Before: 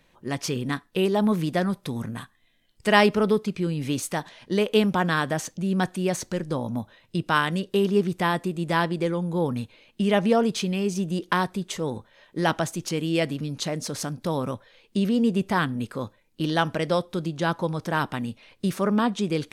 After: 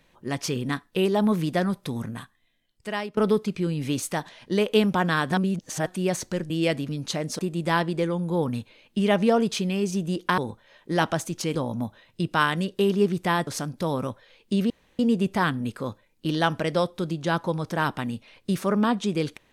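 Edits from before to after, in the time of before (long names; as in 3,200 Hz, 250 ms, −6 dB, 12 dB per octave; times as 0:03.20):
0:01.96–0:03.17: fade out, to −21 dB
0:05.31–0:05.86: reverse
0:06.50–0:08.42: swap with 0:13.02–0:13.91
0:11.41–0:11.85: remove
0:15.14: splice in room tone 0.29 s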